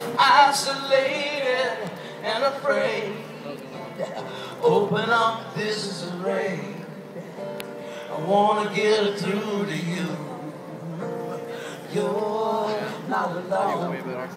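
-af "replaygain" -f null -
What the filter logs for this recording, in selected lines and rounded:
track_gain = +3.5 dB
track_peak = 0.416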